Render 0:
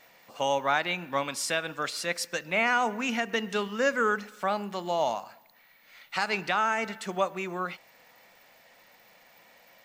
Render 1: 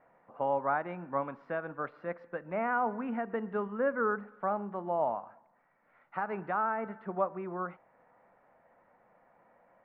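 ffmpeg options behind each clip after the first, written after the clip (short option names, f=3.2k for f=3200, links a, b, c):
-af "lowpass=f=1.4k:w=0.5412,lowpass=f=1.4k:w=1.3066,volume=-3dB"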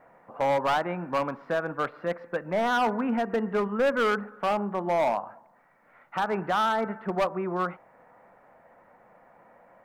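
-af "asoftclip=type=hard:threshold=-28.5dB,volume=8.5dB"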